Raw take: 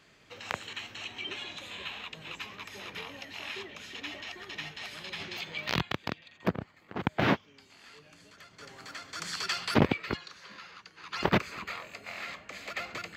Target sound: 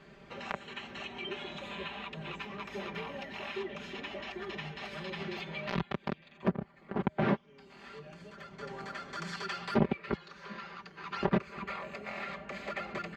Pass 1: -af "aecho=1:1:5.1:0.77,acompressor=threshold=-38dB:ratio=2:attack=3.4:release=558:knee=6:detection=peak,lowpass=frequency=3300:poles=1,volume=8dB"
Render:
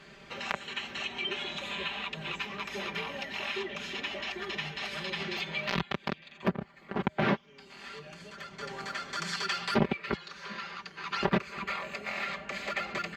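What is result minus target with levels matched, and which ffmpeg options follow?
4,000 Hz band +5.0 dB
-af "aecho=1:1:5.1:0.77,acompressor=threshold=-38dB:ratio=2:attack=3.4:release=558:knee=6:detection=peak,lowpass=frequency=910:poles=1,volume=8dB"

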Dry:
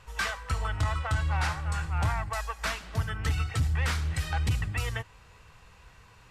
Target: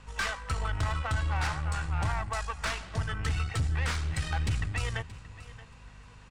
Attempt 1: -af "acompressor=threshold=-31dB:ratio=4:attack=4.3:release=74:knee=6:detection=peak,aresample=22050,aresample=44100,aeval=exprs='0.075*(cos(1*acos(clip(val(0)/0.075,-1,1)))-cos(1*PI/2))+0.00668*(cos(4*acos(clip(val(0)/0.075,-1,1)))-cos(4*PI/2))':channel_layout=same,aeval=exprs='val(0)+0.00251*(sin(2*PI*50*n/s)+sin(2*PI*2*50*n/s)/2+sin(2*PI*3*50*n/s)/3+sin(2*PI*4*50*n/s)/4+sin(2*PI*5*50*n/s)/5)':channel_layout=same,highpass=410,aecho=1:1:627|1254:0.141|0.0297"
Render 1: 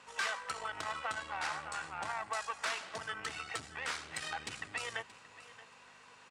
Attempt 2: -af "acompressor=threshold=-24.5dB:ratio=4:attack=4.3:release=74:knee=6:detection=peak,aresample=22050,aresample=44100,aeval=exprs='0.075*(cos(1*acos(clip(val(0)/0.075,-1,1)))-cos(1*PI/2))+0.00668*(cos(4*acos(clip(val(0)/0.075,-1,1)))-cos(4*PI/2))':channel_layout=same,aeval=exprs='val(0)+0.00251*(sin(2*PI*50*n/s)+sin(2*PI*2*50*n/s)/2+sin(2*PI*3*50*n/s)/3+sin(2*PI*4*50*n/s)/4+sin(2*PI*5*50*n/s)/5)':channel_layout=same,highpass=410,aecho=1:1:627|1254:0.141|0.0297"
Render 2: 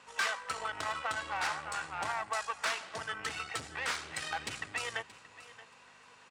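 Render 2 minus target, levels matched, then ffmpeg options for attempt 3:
500 Hz band +3.0 dB
-af "acompressor=threshold=-24.5dB:ratio=4:attack=4.3:release=74:knee=6:detection=peak,aresample=22050,aresample=44100,aeval=exprs='0.075*(cos(1*acos(clip(val(0)/0.075,-1,1)))-cos(1*PI/2))+0.00668*(cos(4*acos(clip(val(0)/0.075,-1,1)))-cos(4*PI/2))':channel_layout=same,aeval=exprs='val(0)+0.00251*(sin(2*PI*50*n/s)+sin(2*PI*2*50*n/s)/2+sin(2*PI*3*50*n/s)/3+sin(2*PI*4*50*n/s)/4+sin(2*PI*5*50*n/s)/5)':channel_layout=same,aecho=1:1:627|1254:0.141|0.0297"

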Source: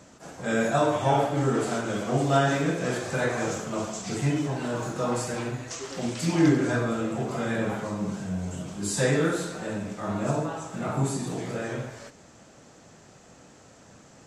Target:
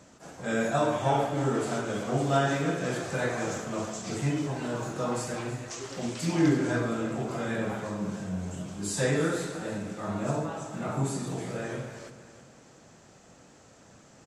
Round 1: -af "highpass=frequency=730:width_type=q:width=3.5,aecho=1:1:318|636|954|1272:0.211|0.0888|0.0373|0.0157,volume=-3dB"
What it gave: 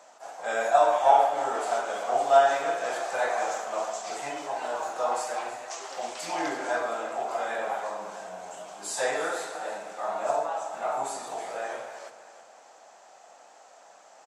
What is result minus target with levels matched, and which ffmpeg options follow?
1,000 Hz band +6.5 dB
-af "aecho=1:1:318|636|954|1272:0.211|0.0888|0.0373|0.0157,volume=-3dB"

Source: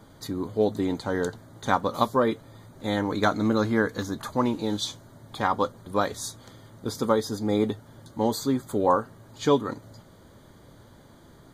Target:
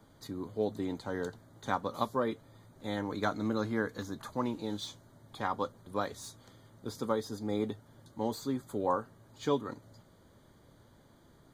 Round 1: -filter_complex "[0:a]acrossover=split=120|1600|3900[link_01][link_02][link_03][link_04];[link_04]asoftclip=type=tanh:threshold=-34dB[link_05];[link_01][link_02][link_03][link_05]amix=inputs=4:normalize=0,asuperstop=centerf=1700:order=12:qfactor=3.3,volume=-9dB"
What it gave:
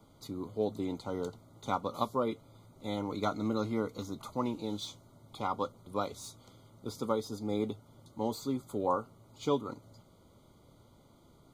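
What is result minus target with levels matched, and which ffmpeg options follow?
2,000 Hz band −7.5 dB
-filter_complex "[0:a]acrossover=split=120|1600|3900[link_01][link_02][link_03][link_04];[link_04]asoftclip=type=tanh:threshold=-34dB[link_05];[link_01][link_02][link_03][link_05]amix=inputs=4:normalize=0,volume=-9dB"

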